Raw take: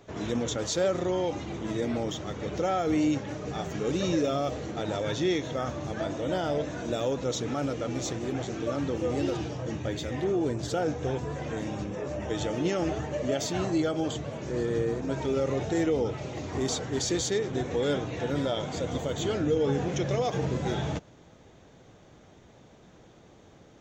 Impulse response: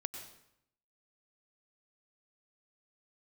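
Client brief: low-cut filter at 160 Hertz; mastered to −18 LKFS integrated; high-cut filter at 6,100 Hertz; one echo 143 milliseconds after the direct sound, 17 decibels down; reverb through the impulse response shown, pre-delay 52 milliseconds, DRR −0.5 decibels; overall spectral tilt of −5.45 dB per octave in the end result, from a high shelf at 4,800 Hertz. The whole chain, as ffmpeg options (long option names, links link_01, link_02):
-filter_complex "[0:a]highpass=160,lowpass=6100,highshelf=frequency=4800:gain=-7.5,aecho=1:1:143:0.141,asplit=2[link_01][link_02];[1:a]atrim=start_sample=2205,adelay=52[link_03];[link_02][link_03]afir=irnorm=-1:irlink=0,volume=1.5dB[link_04];[link_01][link_04]amix=inputs=2:normalize=0,volume=9dB"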